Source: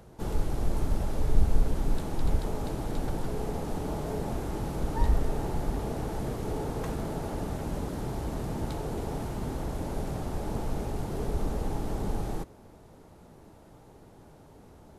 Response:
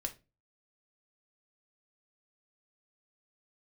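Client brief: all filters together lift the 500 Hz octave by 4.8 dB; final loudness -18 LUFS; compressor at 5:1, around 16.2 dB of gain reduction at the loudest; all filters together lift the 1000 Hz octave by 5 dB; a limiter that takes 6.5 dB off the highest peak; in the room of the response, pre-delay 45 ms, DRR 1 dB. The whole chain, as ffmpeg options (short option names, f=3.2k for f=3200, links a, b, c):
-filter_complex "[0:a]equalizer=f=500:t=o:g=5,equalizer=f=1k:t=o:g=4.5,acompressor=threshold=-32dB:ratio=5,alimiter=level_in=5.5dB:limit=-24dB:level=0:latency=1,volume=-5.5dB,asplit=2[a][b];[1:a]atrim=start_sample=2205,adelay=45[c];[b][c]afir=irnorm=-1:irlink=0,volume=-0.5dB[d];[a][d]amix=inputs=2:normalize=0,volume=19dB"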